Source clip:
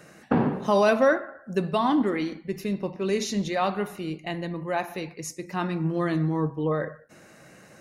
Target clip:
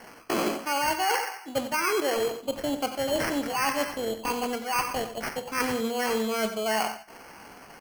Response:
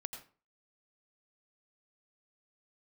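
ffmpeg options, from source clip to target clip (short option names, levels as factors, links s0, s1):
-filter_complex "[0:a]acrossover=split=780|910[s0][s1][s2];[s0]asubboost=boost=2.5:cutoff=84[s3];[s1]dynaudnorm=f=180:g=7:m=2.37[s4];[s2]asplit=2[s5][s6];[s6]adelay=46,volume=0.282[s7];[s5][s7]amix=inputs=2:normalize=0[s8];[s3][s4][s8]amix=inputs=3:normalize=0,lowpass=f=11000:w=0.5412,lowpass=f=11000:w=1.3066,asetrate=62367,aresample=44100,atempo=0.707107,lowshelf=f=250:g=-10,acrusher=samples=12:mix=1:aa=0.000001,areverse,acompressor=threshold=0.0398:ratio=12,areverse,aecho=1:1:91:0.266,volume=1.78"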